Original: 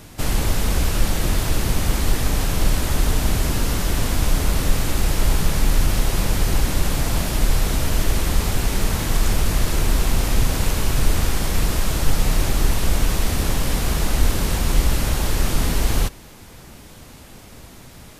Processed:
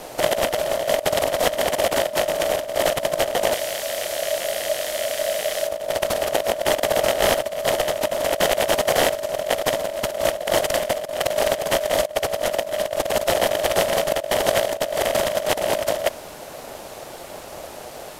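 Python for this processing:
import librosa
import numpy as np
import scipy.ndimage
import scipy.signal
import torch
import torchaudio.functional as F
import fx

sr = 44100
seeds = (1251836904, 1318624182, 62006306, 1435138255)

y = fx.rattle_buzz(x, sr, strikes_db=-27.0, level_db=-14.0)
y = fx.tone_stack(y, sr, knobs='5-5-5', at=(3.53, 5.67), fade=0.02)
y = y * np.sin(2.0 * np.pi * 610.0 * np.arange(len(y)) / sr)
y = fx.over_compress(y, sr, threshold_db=-24.0, ratio=-0.5)
y = y * librosa.db_to_amplitude(3.0)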